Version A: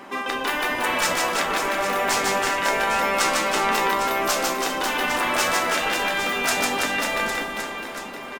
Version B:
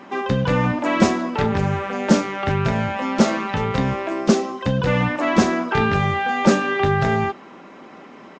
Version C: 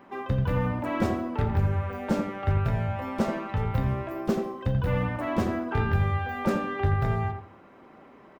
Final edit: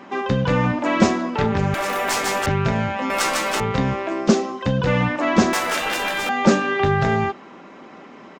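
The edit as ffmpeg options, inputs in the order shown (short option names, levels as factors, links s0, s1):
-filter_complex "[0:a]asplit=3[s0][s1][s2];[1:a]asplit=4[s3][s4][s5][s6];[s3]atrim=end=1.742[s7];[s0]atrim=start=1.738:end=2.462[s8];[s4]atrim=start=2.458:end=3.102[s9];[s1]atrim=start=3.098:end=3.602[s10];[s5]atrim=start=3.598:end=5.532[s11];[s2]atrim=start=5.528:end=6.292[s12];[s6]atrim=start=6.288[s13];[s7][s8]acrossfade=d=0.004:c1=hsin:c2=hsin[s14];[s14][s9]acrossfade=d=0.004:c1=hsin:c2=hsin[s15];[s15][s10]acrossfade=d=0.004:c1=hsin:c2=hsin[s16];[s16][s11]acrossfade=d=0.004:c1=hsin:c2=hsin[s17];[s17][s12]acrossfade=d=0.004:c1=hsin:c2=hsin[s18];[s18][s13]acrossfade=d=0.004:c1=hsin:c2=hsin"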